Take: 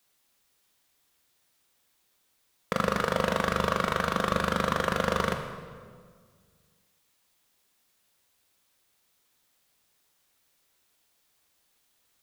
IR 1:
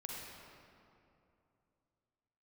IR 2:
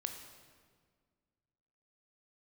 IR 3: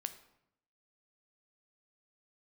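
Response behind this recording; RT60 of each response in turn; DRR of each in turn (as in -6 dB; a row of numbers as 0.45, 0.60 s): 2; 2.7, 1.8, 0.80 s; -3.0, 5.0, 9.5 dB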